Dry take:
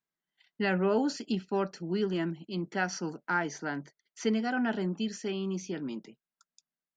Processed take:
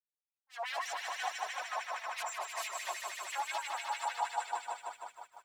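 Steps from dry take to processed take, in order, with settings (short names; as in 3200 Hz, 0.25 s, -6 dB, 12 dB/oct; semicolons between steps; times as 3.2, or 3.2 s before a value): spectral contrast raised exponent 1.9; wavefolder -34 dBFS; swelling echo 97 ms, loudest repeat 5, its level -4.5 dB; varispeed +28%; reverb removal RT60 0.91 s; auto swell 0.141 s; LFO high-pass sine 6.1 Hz 880–2300 Hz; dynamic EQ 1300 Hz, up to -5 dB, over -49 dBFS, Q 2.3; expander -38 dBFS; resonant high-pass 640 Hz, resonance Q 3.9; lo-fi delay 0.16 s, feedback 35%, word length 10-bit, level -9.5 dB; gain -4 dB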